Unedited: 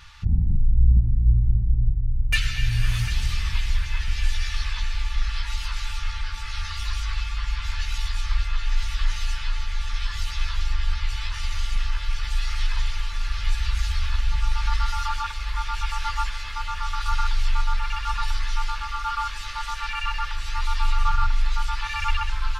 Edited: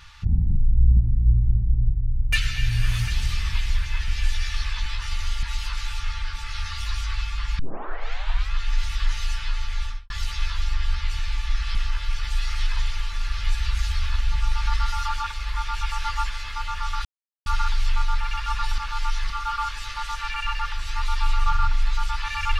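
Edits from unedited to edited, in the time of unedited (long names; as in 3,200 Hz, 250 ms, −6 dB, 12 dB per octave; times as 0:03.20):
0:04.86–0:05.42: swap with 0:11.18–0:11.75
0:07.58: tape start 0.93 s
0:09.81–0:10.09: fade out and dull
0:17.05: splice in silence 0.41 s
0:18.37–0:18.89: reverse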